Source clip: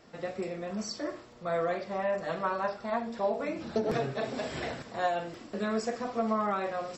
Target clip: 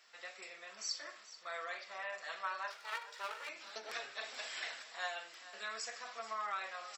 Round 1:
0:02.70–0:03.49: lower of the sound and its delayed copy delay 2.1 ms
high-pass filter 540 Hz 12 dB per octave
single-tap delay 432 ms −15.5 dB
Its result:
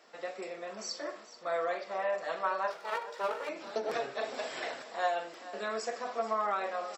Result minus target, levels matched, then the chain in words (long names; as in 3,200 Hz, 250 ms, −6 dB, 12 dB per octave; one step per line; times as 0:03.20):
500 Hz band +8.5 dB
0:02.70–0:03.49: lower of the sound and its delayed copy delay 2.1 ms
high-pass filter 1,700 Hz 12 dB per octave
single-tap delay 432 ms −15.5 dB